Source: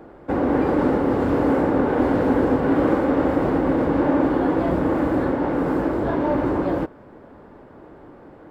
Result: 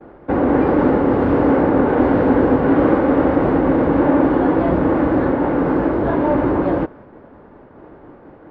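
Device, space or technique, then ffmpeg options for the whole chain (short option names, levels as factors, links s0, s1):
hearing-loss simulation: -af "lowpass=3000,agate=range=0.0224:threshold=0.00891:ratio=3:detection=peak,volume=1.68"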